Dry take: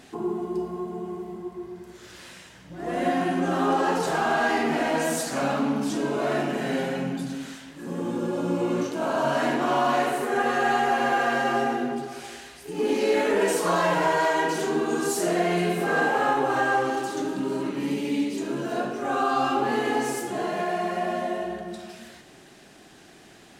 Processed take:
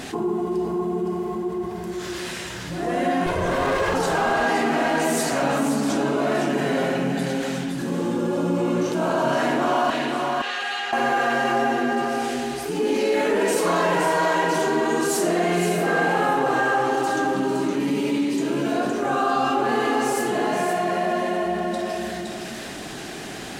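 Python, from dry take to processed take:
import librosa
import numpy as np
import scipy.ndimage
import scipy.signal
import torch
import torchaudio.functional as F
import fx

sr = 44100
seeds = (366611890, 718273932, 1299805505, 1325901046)

p1 = fx.lower_of_two(x, sr, delay_ms=1.9, at=(3.26, 3.94))
p2 = fx.bandpass_q(p1, sr, hz=3400.0, q=1.8, at=(9.9, 10.93))
p3 = p2 + fx.echo_single(p2, sr, ms=515, db=-6.5, dry=0)
y = fx.env_flatten(p3, sr, amount_pct=50)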